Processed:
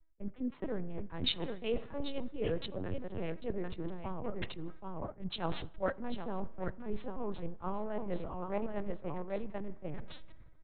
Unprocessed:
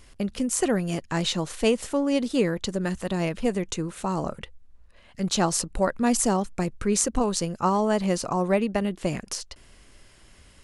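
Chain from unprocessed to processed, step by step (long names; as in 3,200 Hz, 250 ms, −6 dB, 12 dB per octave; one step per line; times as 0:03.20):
adaptive Wiener filter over 15 samples
on a send: single-tap delay 787 ms −5.5 dB
on the sum: linear-prediction vocoder at 8 kHz pitch kept
spring reverb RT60 1.8 s, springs 38 ms, chirp 50 ms, DRR 19 dB
reversed playback
downward compressor 5 to 1, threshold −37 dBFS, peak gain reduction 20 dB
reversed playback
multiband upward and downward expander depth 100%
level +3.5 dB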